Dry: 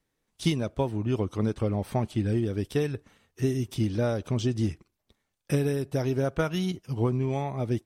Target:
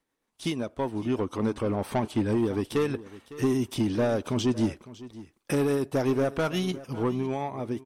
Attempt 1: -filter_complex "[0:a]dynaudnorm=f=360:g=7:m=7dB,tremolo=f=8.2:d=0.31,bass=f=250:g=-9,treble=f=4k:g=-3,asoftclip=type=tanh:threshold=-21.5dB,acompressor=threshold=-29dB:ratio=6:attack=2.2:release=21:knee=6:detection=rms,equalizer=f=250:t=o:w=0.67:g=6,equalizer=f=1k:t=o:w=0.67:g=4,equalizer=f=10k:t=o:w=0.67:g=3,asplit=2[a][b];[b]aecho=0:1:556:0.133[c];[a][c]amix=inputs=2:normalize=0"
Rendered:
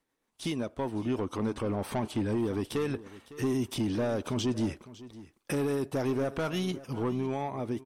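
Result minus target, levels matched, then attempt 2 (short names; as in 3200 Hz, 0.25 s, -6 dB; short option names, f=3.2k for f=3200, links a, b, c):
compressor: peak gain reduction +5.5 dB
-filter_complex "[0:a]dynaudnorm=f=360:g=7:m=7dB,tremolo=f=8.2:d=0.31,bass=f=250:g=-9,treble=f=4k:g=-3,asoftclip=type=tanh:threshold=-21.5dB,equalizer=f=250:t=o:w=0.67:g=6,equalizer=f=1k:t=o:w=0.67:g=4,equalizer=f=10k:t=o:w=0.67:g=3,asplit=2[a][b];[b]aecho=0:1:556:0.133[c];[a][c]amix=inputs=2:normalize=0"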